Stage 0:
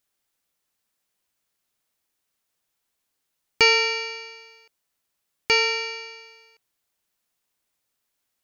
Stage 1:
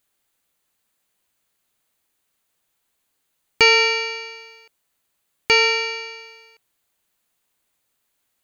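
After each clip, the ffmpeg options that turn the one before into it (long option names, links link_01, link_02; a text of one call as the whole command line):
ffmpeg -i in.wav -filter_complex "[0:a]equalizer=frequency=5400:width_type=o:width=0.22:gain=-7.5,asplit=2[link_01][link_02];[link_02]alimiter=limit=-12dB:level=0:latency=1:release=65,volume=-1dB[link_03];[link_01][link_03]amix=inputs=2:normalize=0" out.wav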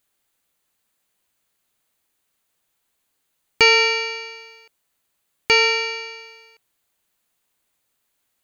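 ffmpeg -i in.wav -af anull out.wav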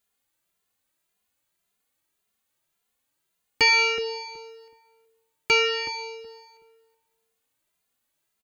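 ffmpeg -i in.wav -filter_complex "[0:a]asplit=2[link_01][link_02];[link_02]adelay=373,lowpass=frequency=900:poles=1,volume=-8.5dB,asplit=2[link_03][link_04];[link_04]adelay=373,lowpass=frequency=900:poles=1,volume=0.23,asplit=2[link_05][link_06];[link_06]adelay=373,lowpass=frequency=900:poles=1,volume=0.23[link_07];[link_01][link_03][link_05][link_07]amix=inputs=4:normalize=0,asplit=2[link_08][link_09];[link_09]adelay=2.5,afreqshift=1.8[link_10];[link_08][link_10]amix=inputs=2:normalize=1,volume=-2dB" out.wav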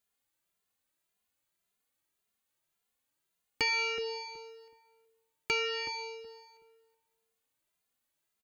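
ffmpeg -i in.wav -af "acompressor=threshold=-26dB:ratio=2,volume=-5.5dB" out.wav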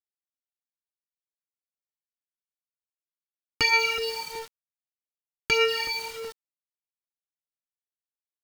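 ffmpeg -i in.wav -af "aphaser=in_gain=1:out_gain=1:delay=1.8:decay=0.58:speed=1.6:type=sinusoidal,aeval=exprs='val(0)*gte(abs(val(0)),0.00794)':channel_layout=same,volume=6dB" out.wav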